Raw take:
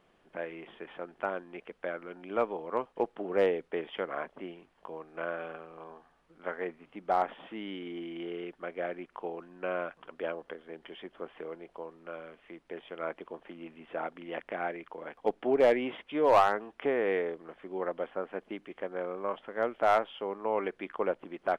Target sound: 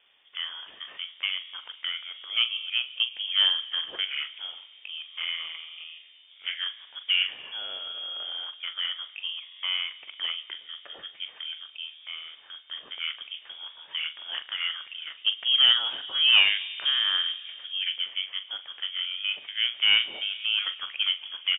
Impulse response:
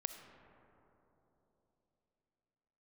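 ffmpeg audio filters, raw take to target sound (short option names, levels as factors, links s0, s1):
-filter_complex "[0:a]asplit=2[s0][s1];[s1]adelay=42,volume=0.266[s2];[s0][s2]amix=inputs=2:normalize=0,asplit=2[s3][s4];[1:a]atrim=start_sample=2205[s5];[s4][s5]afir=irnorm=-1:irlink=0,volume=0.596[s6];[s3][s6]amix=inputs=2:normalize=0,lowpass=f=3100:t=q:w=0.5098,lowpass=f=3100:t=q:w=0.6013,lowpass=f=3100:t=q:w=0.9,lowpass=f=3100:t=q:w=2.563,afreqshift=-3600"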